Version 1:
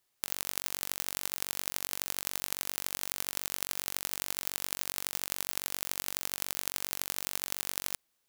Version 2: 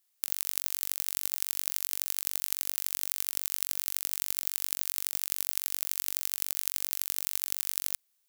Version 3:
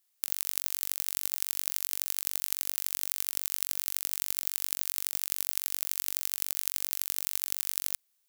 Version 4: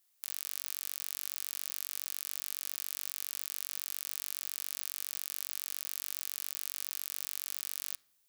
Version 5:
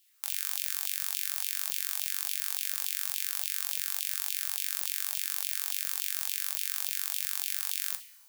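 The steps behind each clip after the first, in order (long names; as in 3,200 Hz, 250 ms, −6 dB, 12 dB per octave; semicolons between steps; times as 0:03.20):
spectral tilt +3 dB per octave; level −7 dB
no processing that can be heard
brickwall limiter −13 dBFS, peak gain reduction 11.5 dB; convolution reverb RT60 0.75 s, pre-delay 7 ms, DRR 15.5 dB; level +1.5 dB
coupled-rooms reverb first 0.4 s, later 2.1 s, from −17 dB, DRR 6 dB; auto-filter high-pass saw down 3.5 Hz 760–3,100 Hz; level +5 dB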